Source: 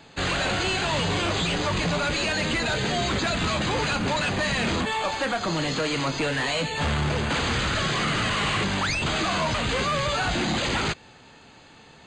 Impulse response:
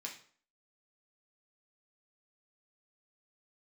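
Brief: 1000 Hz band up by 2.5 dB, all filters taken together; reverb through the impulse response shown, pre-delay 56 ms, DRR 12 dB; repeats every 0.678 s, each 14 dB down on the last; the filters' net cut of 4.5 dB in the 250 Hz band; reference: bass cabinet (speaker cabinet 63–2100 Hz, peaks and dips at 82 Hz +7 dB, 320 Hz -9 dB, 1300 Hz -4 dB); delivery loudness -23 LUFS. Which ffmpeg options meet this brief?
-filter_complex "[0:a]equalizer=f=250:t=o:g=-4,equalizer=f=1k:t=o:g=5,aecho=1:1:678|1356:0.2|0.0399,asplit=2[a][b];[1:a]atrim=start_sample=2205,adelay=56[c];[b][c]afir=irnorm=-1:irlink=0,volume=-10.5dB[d];[a][d]amix=inputs=2:normalize=0,highpass=f=63:w=0.5412,highpass=f=63:w=1.3066,equalizer=f=82:t=q:w=4:g=7,equalizer=f=320:t=q:w=4:g=-9,equalizer=f=1.3k:t=q:w=4:g=-4,lowpass=f=2.1k:w=0.5412,lowpass=f=2.1k:w=1.3066,volume=3dB"

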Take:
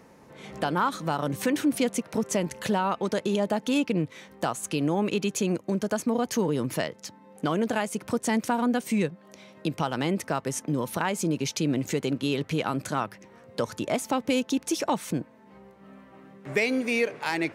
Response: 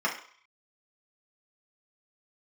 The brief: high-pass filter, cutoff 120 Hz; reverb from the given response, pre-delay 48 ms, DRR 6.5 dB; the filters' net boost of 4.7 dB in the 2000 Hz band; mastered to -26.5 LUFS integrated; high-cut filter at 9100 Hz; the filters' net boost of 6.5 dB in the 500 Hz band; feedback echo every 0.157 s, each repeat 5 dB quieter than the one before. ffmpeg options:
-filter_complex "[0:a]highpass=120,lowpass=9.1k,equalizer=f=500:t=o:g=7.5,equalizer=f=2k:t=o:g=5.5,aecho=1:1:157|314|471|628|785|942|1099:0.562|0.315|0.176|0.0988|0.0553|0.031|0.0173,asplit=2[a][b];[1:a]atrim=start_sample=2205,adelay=48[c];[b][c]afir=irnorm=-1:irlink=0,volume=-17.5dB[d];[a][d]amix=inputs=2:normalize=0,volume=-4dB"

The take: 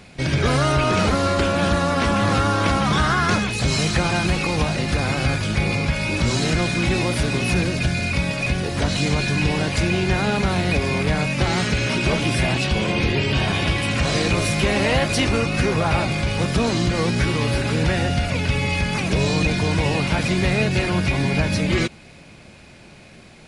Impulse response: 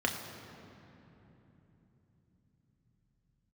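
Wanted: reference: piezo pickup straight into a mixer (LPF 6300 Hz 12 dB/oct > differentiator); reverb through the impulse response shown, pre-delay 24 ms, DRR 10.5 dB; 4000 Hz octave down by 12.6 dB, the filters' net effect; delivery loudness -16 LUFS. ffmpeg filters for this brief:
-filter_complex "[0:a]equalizer=f=4k:t=o:g=-8.5,asplit=2[a][b];[1:a]atrim=start_sample=2205,adelay=24[c];[b][c]afir=irnorm=-1:irlink=0,volume=-19dB[d];[a][d]amix=inputs=2:normalize=0,lowpass=6.3k,aderivative,volume=20.5dB"

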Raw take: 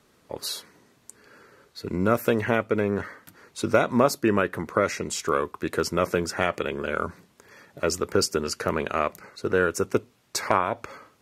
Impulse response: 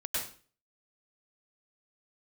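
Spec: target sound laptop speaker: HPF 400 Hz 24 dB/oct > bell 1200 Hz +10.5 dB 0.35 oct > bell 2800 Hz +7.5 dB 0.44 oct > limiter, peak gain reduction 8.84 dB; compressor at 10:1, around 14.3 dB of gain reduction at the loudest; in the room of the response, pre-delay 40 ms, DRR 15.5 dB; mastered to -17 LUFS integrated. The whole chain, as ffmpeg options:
-filter_complex "[0:a]acompressor=threshold=-29dB:ratio=10,asplit=2[a][b];[1:a]atrim=start_sample=2205,adelay=40[c];[b][c]afir=irnorm=-1:irlink=0,volume=-20.5dB[d];[a][d]amix=inputs=2:normalize=0,highpass=f=400:w=0.5412,highpass=f=400:w=1.3066,equalizer=f=1.2k:t=o:w=0.35:g=10.5,equalizer=f=2.8k:t=o:w=0.44:g=7.5,volume=18.5dB,alimiter=limit=-3dB:level=0:latency=1"

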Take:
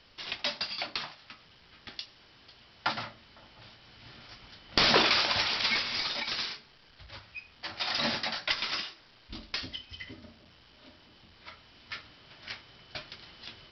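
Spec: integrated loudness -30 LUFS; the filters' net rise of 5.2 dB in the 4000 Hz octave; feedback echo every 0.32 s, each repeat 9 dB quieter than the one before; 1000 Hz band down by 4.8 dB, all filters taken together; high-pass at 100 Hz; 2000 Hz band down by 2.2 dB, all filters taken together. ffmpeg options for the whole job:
-af "highpass=100,equalizer=f=1k:t=o:g=-5.5,equalizer=f=2k:t=o:g=-4,equalizer=f=4k:t=o:g=7.5,aecho=1:1:320|640|960|1280:0.355|0.124|0.0435|0.0152,volume=-4.5dB"

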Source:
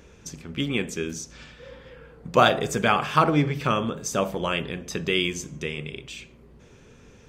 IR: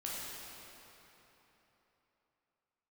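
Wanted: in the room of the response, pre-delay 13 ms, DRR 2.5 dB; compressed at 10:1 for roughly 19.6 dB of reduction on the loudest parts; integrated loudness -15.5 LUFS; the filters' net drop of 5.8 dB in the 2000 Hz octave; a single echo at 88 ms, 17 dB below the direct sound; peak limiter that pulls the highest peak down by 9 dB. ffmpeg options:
-filter_complex "[0:a]equalizer=f=2k:t=o:g=-8.5,acompressor=threshold=-34dB:ratio=10,alimiter=level_in=5.5dB:limit=-24dB:level=0:latency=1,volume=-5.5dB,aecho=1:1:88:0.141,asplit=2[a][b];[1:a]atrim=start_sample=2205,adelay=13[c];[b][c]afir=irnorm=-1:irlink=0,volume=-4.5dB[d];[a][d]amix=inputs=2:normalize=0,volume=24.5dB"

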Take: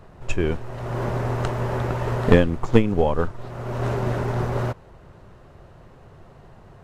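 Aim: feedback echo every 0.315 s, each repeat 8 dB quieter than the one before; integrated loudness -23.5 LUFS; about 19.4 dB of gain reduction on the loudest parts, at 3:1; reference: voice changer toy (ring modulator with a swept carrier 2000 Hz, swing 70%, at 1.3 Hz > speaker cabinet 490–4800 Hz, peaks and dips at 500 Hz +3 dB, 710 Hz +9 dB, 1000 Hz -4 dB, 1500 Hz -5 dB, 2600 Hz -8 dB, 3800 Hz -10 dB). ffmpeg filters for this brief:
-af "acompressor=threshold=-36dB:ratio=3,aecho=1:1:315|630|945|1260|1575:0.398|0.159|0.0637|0.0255|0.0102,aeval=exprs='val(0)*sin(2*PI*2000*n/s+2000*0.7/1.3*sin(2*PI*1.3*n/s))':c=same,highpass=490,equalizer=f=500:t=q:w=4:g=3,equalizer=f=710:t=q:w=4:g=9,equalizer=f=1k:t=q:w=4:g=-4,equalizer=f=1.5k:t=q:w=4:g=-5,equalizer=f=2.6k:t=q:w=4:g=-8,equalizer=f=3.8k:t=q:w=4:g=-10,lowpass=f=4.8k:w=0.5412,lowpass=f=4.8k:w=1.3066,volume=16dB"

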